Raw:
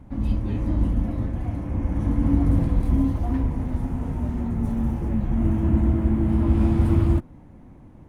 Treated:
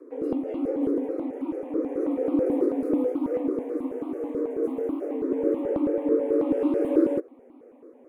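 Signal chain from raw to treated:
low-shelf EQ 330 Hz +9.5 dB
frequency shifter +230 Hz
step-sequenced phaser 9.2 Hz 810–1,700 Hz
level −5.5 dB

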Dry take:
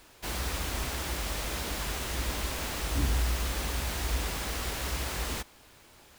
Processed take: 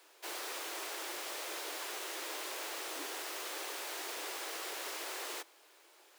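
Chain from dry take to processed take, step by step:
Butterworth high-pass 320 Hz 72 dB per octave
level −5.5 dB

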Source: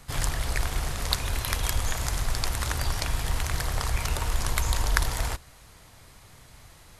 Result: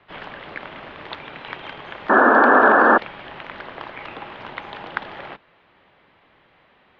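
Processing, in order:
sound drawn into the spectrogram noise, 0:02.09–0:02.98, 320–1,900 Hz −13 dBFS
single-sideband voice off tune −110 Hz 230–3,300 Hz

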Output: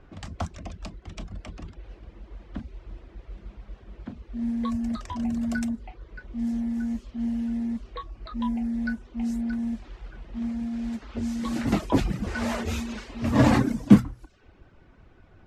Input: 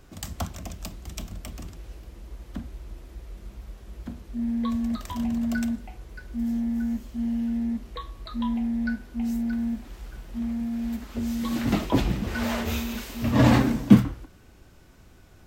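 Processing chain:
Butterworth low-pass 12,000 Hz 36 dB per octave
mains-hum notches 60/120/180/240 Hz
low-pass that shuts in the quiet parts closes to 2,200 Hz, open at −22.5 dBFS
reverb reduction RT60 0.54 s
dynamic equaliser 3,300 Hz, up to −4 dB, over −52 dBFS, Q 1.4
level +1 dB

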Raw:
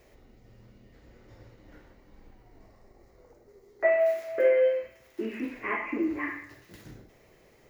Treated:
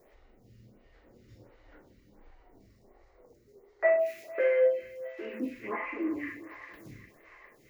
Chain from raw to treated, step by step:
0:03.95–0:04.45: parametric band 2,500 Hz +6 dB 0.34 octaves
feedback echo with a high-pass in the loop 403 ms, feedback 73%, high-pass 560 Hz, level −14 dB
phaser with staggered stages 1.4 Hz

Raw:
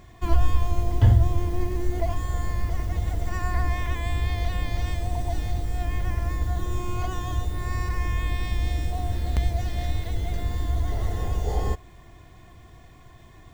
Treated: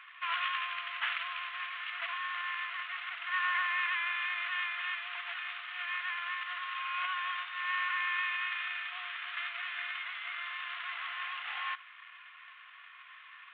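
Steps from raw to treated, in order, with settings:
variable-slope delta modulation 16 kbit/s
elliptic high-pass filter 1,200 Hz, stop band 80 dB
level +7.5 dB

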